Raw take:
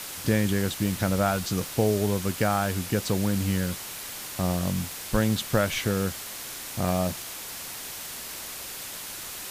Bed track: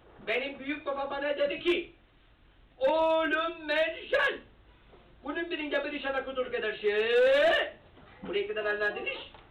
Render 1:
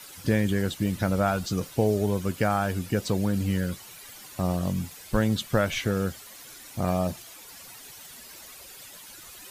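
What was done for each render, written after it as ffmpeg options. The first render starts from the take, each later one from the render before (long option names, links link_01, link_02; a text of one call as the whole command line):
ffmpeg -i in.wav -af "afftdn=noise_reduction=12:noise_floor=-38" out.wav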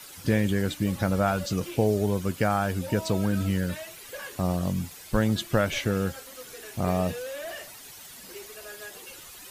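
ffmpeg -i in.wav -i bed.wav -filter_complex "[1:a]volume=-13.5dB[link_01];[0:a][link_01]amix=inputs=2:normalize=0" out.wav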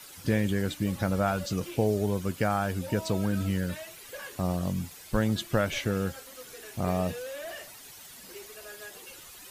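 ffmpeg -i in.wav -af "volume=-2.5dB" out.wav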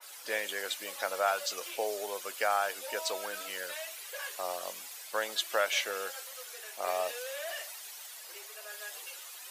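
ffmpeg -i in.wav -af "highpass=frequency=540:width=0.5412,highpass=frequency=540:width=1.3066,adynamicequalizer=threshold=0.00501:dfrequency=1800:dqfactor=0.7:tfrequency=1800:tqfactor=0.7:attack=5:release=100:ratio=0.375:range=2:mode=boostabove:tftype=highshelf" out.wav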